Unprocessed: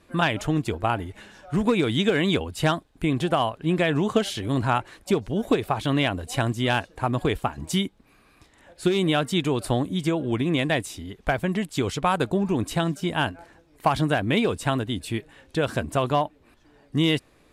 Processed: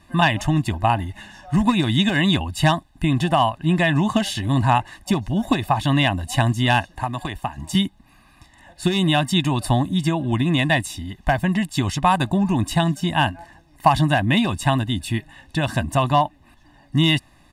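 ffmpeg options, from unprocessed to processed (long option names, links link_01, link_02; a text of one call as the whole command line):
ffmpeg -i in.wav -filter_complex "[0:a]asettb=1/sr,asplit=3[link_01][link_02][link_03];[link_01]atrim=end=6.924[link_04];[link_02]atrim=start=6.92:end=7.75,asetpts=PTS-STARTPTS,afade=type=in:duration=0.004:curve=qsin,afade=type=out:start_time=0.826:duration=0.004:curve=qsin,acrossover=split=360|1400[link_05][link_06][link_07];[link_05]acompressor=threshold=-36dB:ratio=4[link_08];[link_06]acompressor=threshold=-30dB:ratio=4[link_09];[link_07]acompressor=threshold=-37dB:ratio=4[link_10];[link_08][link_09][link_10]amix=inputs=3:normalize=0[link_11];[link_03]atrim=start=7.746[link_12];[link_04][link_11]acrossfade=duration=0.004:curve1=hsin:curve2=qsin[link_13];[link_13][link_12]acrossfade=duration=0.004:curve1=qsin:curve2=hsin,aecho=1:1:1.1:0.98,volume=2dB" out.wav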